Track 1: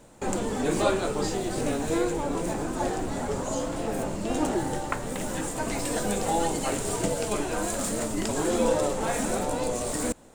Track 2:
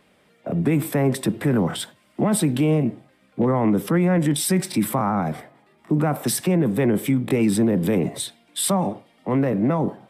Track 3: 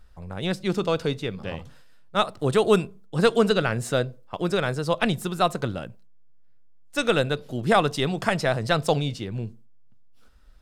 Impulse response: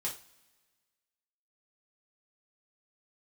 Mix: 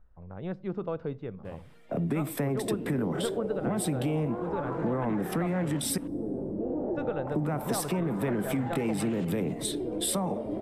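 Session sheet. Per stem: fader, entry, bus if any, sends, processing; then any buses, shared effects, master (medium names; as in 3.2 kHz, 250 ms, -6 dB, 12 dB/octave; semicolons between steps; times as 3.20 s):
-4.5 dB, 2.35 s, no send, echo send -11 dB, high-pass 59 Hz; peak limiter -20.5 dBFS, peak gain reduction 9.5 dB; LFO low-pass saw up 0.29 Hz 240–2900 Hz
-3.0 dB, 1.45 s, muted 5.98–7.27 s, send -22.5 dB, no echo send, none
-7.5 dB, 0.00 s, no send, no echo send, low-pass 1.2 kHz 12 dB/octave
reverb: on, pre-delay 3 ms
echo: delay 277 ms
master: compression 4:1, threshold -27 dBFS, peak gain reduction 9 dB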